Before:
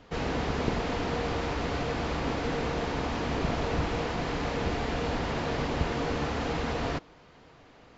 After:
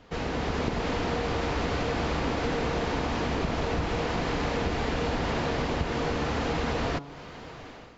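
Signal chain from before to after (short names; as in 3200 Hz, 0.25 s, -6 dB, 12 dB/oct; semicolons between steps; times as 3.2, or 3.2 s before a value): AGC gain up to 12.5 dB; de-hum 141.3 Hz, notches 10; compressor 4:1, threshold -27 dBFS, peak gain reduction 13.5 dB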